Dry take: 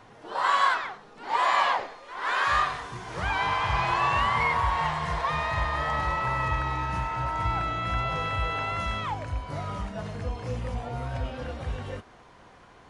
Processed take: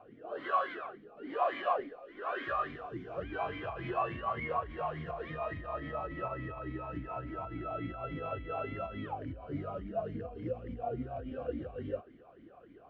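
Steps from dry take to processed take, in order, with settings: tilt EQ -4.5 dB/octave; peak limiter -14 dBFS, peak gain reduction 11.5 dB; talking filter a-i 3.5 Hz; trim +4 dB

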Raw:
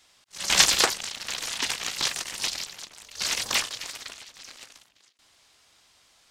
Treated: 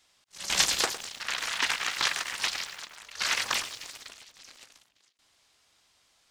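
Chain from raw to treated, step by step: 1.20–3.54 s: peaking EQ 1.5 kHz +12 dB 2.2 oct; bit-crushed delay 107 ms, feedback 35%, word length 6-bit, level -13 dB; trim -6 dB

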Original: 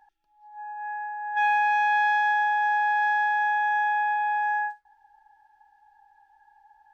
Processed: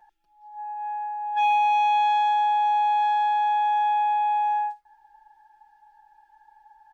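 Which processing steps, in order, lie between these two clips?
comb 5.7 ms, depth 98%

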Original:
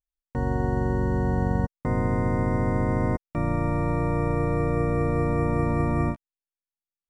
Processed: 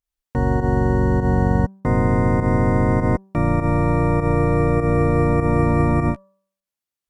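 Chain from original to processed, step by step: volume shaper 100 bpm, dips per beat 1, -11 dB, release 89 ms; Chebyshev shaper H 5 -36 dB, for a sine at -11.5 dBFS; de-hum 193 Hz, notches 9; trim +6.5 dB

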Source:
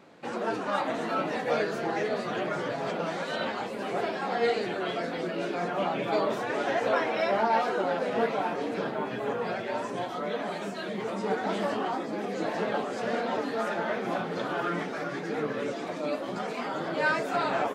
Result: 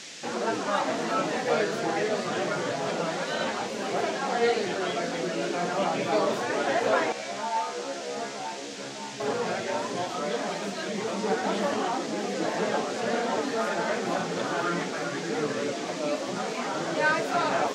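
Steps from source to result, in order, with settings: 7.12–9.20 s: feedback comb 69 Hz, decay 0.37 s, harmonics all, mix 100%; band noise 1.6–7.1 kHz -45 dBFS; trim +2 dB

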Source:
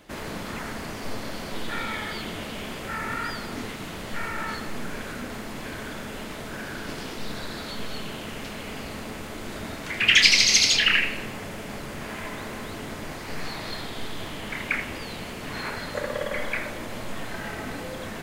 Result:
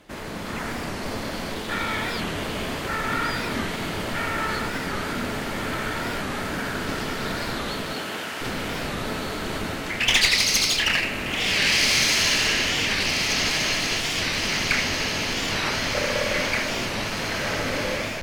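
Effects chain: treble shelf 8.6 kHz -3 dB; echo that smears into a reverb 1591 ms, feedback 64%, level -4 dB; level rider gain up to 4.5 dB; one-sided clip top -21.5 dBFS; 0.94–1.44 s: companded quantiser 8-bit; 7.92–8.40 s: high-pass 200 Hz -> 810 Hz 6 dB/octave; warped record 45 rpm, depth 160 cents

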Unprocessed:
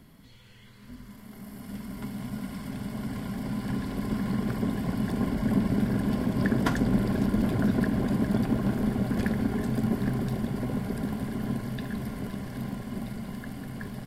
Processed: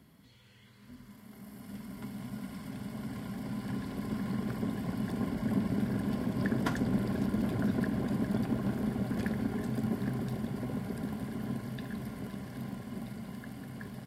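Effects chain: high-pass 67 Hz; trim -5.5 dB

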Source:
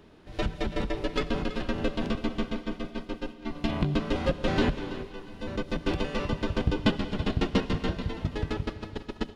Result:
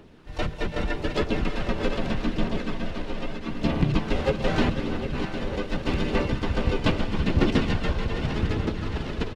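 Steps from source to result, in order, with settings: backward echo that repeats 378 ms, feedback 79%, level -8.5 dB; small resonant body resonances 1.8/2.7 kHz, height 7 dB, ringing for 50 ms; phaser 0.81 Hz, delay 2.1 ms, feedback 31%; harmony voices -4 st -4 dB, +7 st -13 dB

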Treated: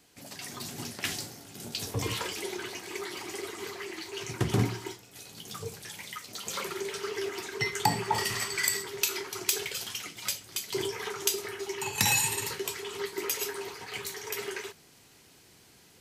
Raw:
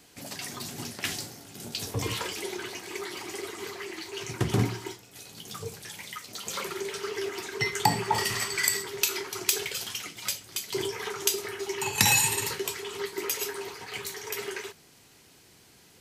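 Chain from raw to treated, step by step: level rider gain up to 5 dB; hard clipper -7.5 dBFS, distortion -26 dB; trim -6 dB

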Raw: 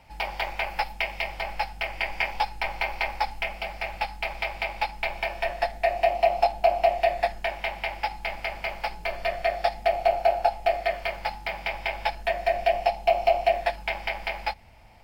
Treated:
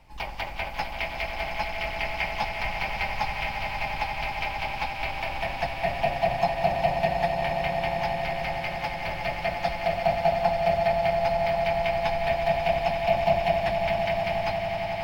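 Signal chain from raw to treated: octave divider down 2 oct, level +4 dB; echo with a slow build-up 90 ms, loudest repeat 8, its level -11 dB; harmony voices +3 st -18 dB, +4 st -15 dB; trim -4 dB

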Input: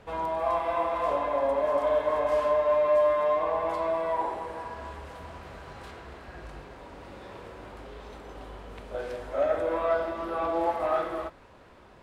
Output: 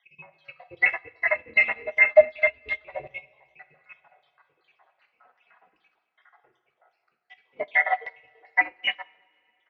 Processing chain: random holes in the spectrogram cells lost 70%; small resonant body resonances 220/490/1000 Hz, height 7 dB, ringing for 40 ms; ring modulator 1.1 kHz; LFO band-pass saw down 2.1 Hz 260–2900 Hz; on a send: delay 267 ms -17 dB; on the sum: dynamic bell 1.3 kHz, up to +5 dB, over -46 dBFS, Q 1.5; flange 0.22 Hz, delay 0.4 ms, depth 5 ms, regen -31%; distance through air 120 m; tape speed +24%; two-slope reverb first 0.49 s, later 3.6 s, from -16 dB, DRR 6 dB; loudness maximiser +28 dB; upward expansion 2.5:1, over -23 dBFS; trim -2.5 dB

